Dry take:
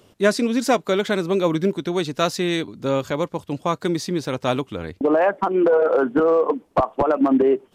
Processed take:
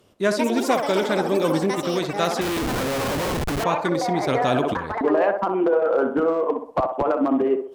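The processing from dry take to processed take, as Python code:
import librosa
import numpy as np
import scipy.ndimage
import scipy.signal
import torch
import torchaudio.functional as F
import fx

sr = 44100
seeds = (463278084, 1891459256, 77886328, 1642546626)

p1 = fx.level_steps(x, sr, step_db=13)
p2 = x + (p1 * librosa.db_to_amplitude(2.0))
p3 = fx.echo_pitch(p2, sr, ms=233, semitones=7, count=3, db_per_echo=-6.0)
p4 = fx.cheby_harmonics(p3, sr, harmonics=(7,), levels_db=(-38,), full_scale_db=-1.5)
p5 = p4 + fx.echo_banded(p4, sr, ms=64, feedback_pct=47, hz=670.0, wet_db=-5.0, dry=0)
p6 = fx.schmitt(p5, sr, flips_db=-22.5, at=(2.41, 3.64))
p7 = fx.env_flatten(p6, sr, amount_pct=70, at=(4.28, 4.74))
y = p7 * librosa.db_to_amplitude(-6.5)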